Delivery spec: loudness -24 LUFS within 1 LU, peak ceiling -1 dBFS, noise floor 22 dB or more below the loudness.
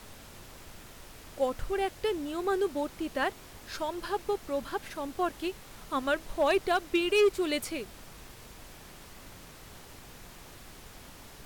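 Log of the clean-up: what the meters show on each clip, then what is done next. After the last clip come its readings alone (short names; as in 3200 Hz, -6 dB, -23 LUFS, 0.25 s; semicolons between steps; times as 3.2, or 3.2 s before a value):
clipped 0.2%; flat tops at -18.5 dBFS; noise floor -50 dBFS; noise floor target -53 dBFS; loudness -31.0 LUFS; peak -18.5 dBFS; loudness target -24.0 LUFS
-> clip repair -18.5 dBFS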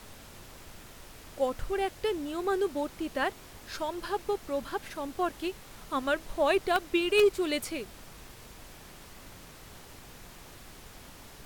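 clipped 0.0%; noise floor -50 dBFS; noise floor target -53 dBFS
-> noise print and reduce 6 dB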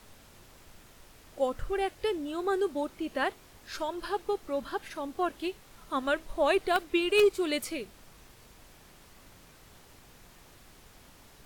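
noise floor -56 dBFS; loudness -30.5 LUFS; peak -10.0 dBFS; loudness target -24.0 LUFS
-> gain +6.5 dB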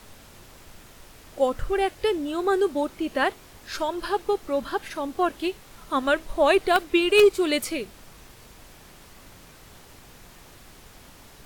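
loudness -24.0 LUFS; peak -3.5 dBFS; noise floor -50 dBFS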